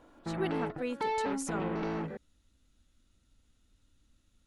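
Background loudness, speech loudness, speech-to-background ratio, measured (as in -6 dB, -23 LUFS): -35.5 LUFS, -39.0 LUFS, -3.5 dB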